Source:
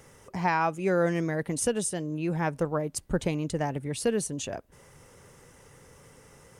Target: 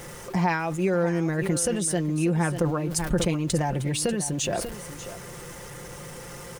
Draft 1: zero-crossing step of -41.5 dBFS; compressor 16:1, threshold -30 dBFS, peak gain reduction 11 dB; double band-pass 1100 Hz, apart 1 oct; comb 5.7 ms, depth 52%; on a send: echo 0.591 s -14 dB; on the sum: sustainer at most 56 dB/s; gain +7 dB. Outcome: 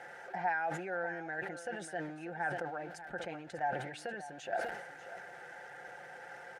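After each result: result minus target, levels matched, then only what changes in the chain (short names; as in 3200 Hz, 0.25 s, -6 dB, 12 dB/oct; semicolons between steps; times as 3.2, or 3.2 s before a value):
1000 Hz band +8.5 dB; zero-crossing step: distortion +6 dB
remove: double band-pass 1100 Hz, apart 1 oct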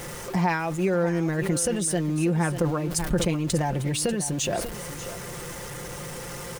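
zero-crossing step: distortion +6 dB
change: zero-crossing step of -48 dBFS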